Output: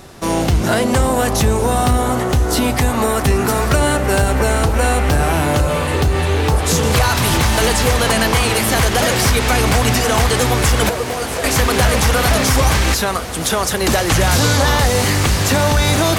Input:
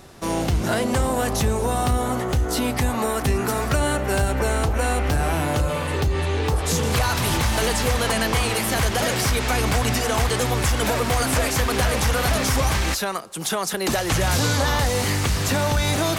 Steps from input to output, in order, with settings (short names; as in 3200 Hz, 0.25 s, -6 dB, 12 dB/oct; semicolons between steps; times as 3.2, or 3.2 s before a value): 10.89–11.44 ladder high-pass 340 Hz, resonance 50%; diffused feedback echo 1.173 s, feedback 71%, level -14 dB; gain +6.5 dB